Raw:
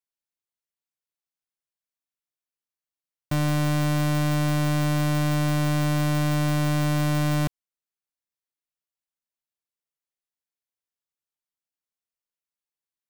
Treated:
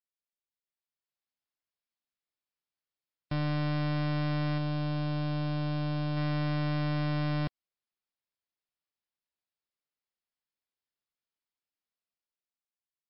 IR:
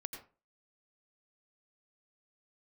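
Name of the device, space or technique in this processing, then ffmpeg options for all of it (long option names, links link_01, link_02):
low-bitrate web radio: -filter_complex "[0:a]asettb=1/sr,asplit=3[link_01][link_02][link_03];[link_01]atrim=end=4.584[link_04];[link_02]atrim=start=4.58:end=6.17,asetpts=PTS-STARTPTS,afade=type=in:duration=0.004:curve=qsin,afade=type=out:start_time=1.586:duration=0.004:curve=qsin,equalizer=frequency=1250:width_type=o:width=0.33:gain=-4,equalizer=frequency=2000:width_type=o:width=0.33:gain=-9,equalizer=frequency=6300:width_type=o:width=0.33:gain=-5[link_05];[link_03]atrim=start=6.166[link_06];[link_04][link_05]acrossfade=duration=0.004:curve1=hsin:curve2=qsin[link_07];[link_07][link_06]acrossfade=duration=0.004:curve1=qsin:curve2=hsin,dynaudnorm=framelen=110:gausssize=17:maxgain=8dB,alimiter=limit=-21dB:level=0:latency=1:release=75,volume=-8dB" -ar 12000 -c:a libmp3lame -b:a 48k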